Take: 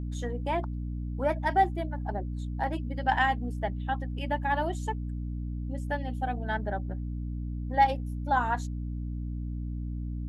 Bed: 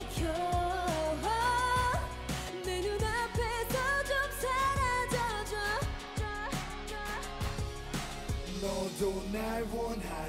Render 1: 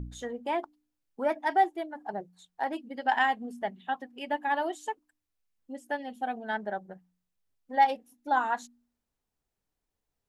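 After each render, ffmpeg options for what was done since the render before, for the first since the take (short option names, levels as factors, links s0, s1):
-af "bandreject=f=60:t=h:w=4,bandreject=f=120:t=h:w=4,bandreject=f=180:t=h:w=4,bandreject=f=240:t=h:w=4,bandreject=f=300:t=h:w=4"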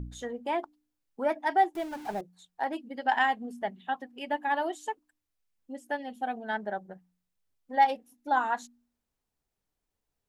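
-filter_complex "[0:a]asettb=1/sr,asplit=3[s0][s1][s2];[s0]atrim=end=1.754[s3];[s1]atrim=start=1.75:end=2.21,asetpts=PTS-STARTPTS,afade=t=in:d=0.004:c=qsin,afade=t=out:st=0.456:d=0.004:c=qsin,aeval=exprs='val(0)+0.5*0.01*sgn(val(0))':c=same[s4];[s2]atrim=start=2.206[s5];[s3][s4]acrossfade=d=0.004:c1=hsin:c2=qsin[s6];[s6][s5]acrossfade=d=0.004:c1=qsin:c2=hsin"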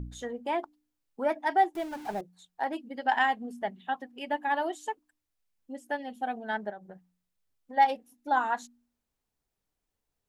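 -filter_complex "[0:a]asplit=3[s0][s1][s2];[s0]afade=t=out:st=6.7:d=0.02[s3];[s1]acompressor=threshold=0.01:ratio=5:attack=3.2:release=140:knee=1:detection=peak,afade=t=in:st=6.7:d=0.02,afade=t=out:st=7.76:d=0.02[s4];[s2]afade=t=in:st=7.76:d=0.02[s5];[s3][s4][s5]amix=inputs=3:normalize=0"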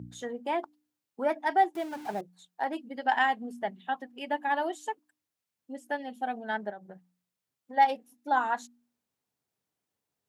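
-af "highpass=f=100:w=0.5412,highpass=f=100:w=1.3066"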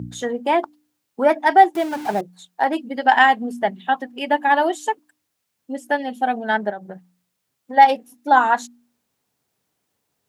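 -af "volume=3.98,alimiter=limit=0.794:level=0:latency=1"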